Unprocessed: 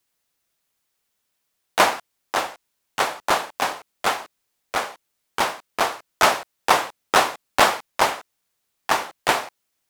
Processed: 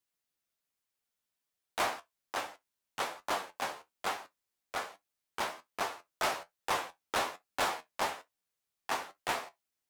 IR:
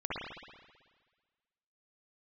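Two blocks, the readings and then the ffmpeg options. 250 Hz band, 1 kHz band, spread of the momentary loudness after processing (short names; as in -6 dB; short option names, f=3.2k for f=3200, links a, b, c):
-13.5 dB, -14.0 dB, 12 LU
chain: -filter_complex "[0:a]flanger=delay=9.8:depth=3.9:regen=52:speed=1.2:shape=triangular,asplit=2[a][b];[1:a]atrim=start_sample=2205,atrim=end_sample=3087[c];[b][c]afir=irnorm=-1:irlink=0,volume=-28.5dB[d];[a][d]amix=inputs=2:normalize=0,asoftclip=type=hard:threshold=-17dB,volume=-8.5dB"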